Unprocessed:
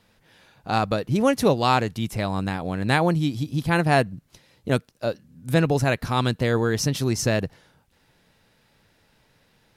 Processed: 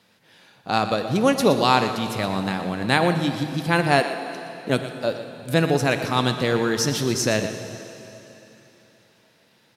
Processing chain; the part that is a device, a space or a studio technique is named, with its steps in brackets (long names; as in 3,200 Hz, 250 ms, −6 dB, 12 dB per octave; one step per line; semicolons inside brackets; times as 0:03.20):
PA in a hall (high-pass filter 150 Hz 12 dB per octave; parametric band 4,000 Hz +3 dB 1.4 octaves; single-tap delay 119 ms −12 dB; convolution reverb RT60 3.3 s, pre-delay 6 ms, DRR 8.5 dB)
0:03.99–0:04.68: high-pass filter 290 Hz → 130 Hz 24 dB per octave
level +1 dB